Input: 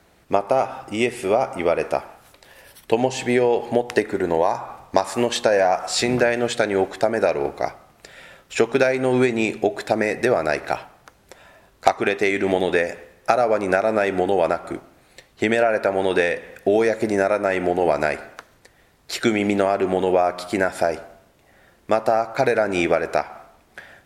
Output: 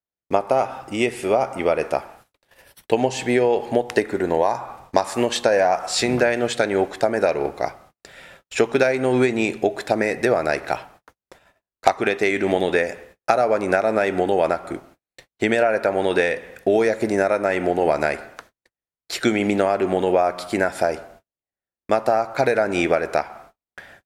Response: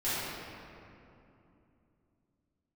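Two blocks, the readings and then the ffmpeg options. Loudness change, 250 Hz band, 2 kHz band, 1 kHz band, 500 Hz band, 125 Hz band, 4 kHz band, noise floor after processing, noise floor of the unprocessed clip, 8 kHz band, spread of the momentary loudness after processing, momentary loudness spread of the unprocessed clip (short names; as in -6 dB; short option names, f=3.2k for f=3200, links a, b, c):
0.0 dB, 0.0 dB, 0.0 dB, 0.0 dB, 0.0 dB, 0.0 dB, 0.0 dB, under -85 dBFS, -57 dBFS, 0.0 dB, 7 LU, 7 LU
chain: -af "agate=range=-42dB:threshold=-46dB:ratio=16:detection=peak"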